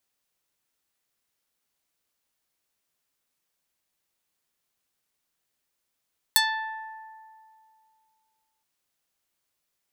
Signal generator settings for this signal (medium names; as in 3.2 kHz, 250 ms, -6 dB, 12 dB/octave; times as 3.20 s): plucked string A5, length 2.27 s, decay 2.46 s, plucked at 0.35, medium